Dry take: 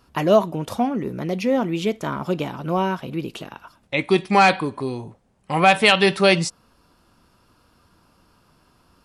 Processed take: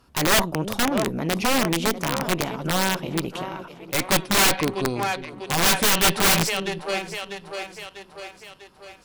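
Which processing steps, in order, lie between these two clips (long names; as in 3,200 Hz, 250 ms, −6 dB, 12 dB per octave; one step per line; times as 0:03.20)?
harmonic generator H 4 −13 dB, 7 −29 dB, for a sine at −4 dBFS
echo with a time of its own for lows and highs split 370 Hz, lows 351 ms, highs 646 ms, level −14 dB
wrap-around overflow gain 15 dB
level +2 dB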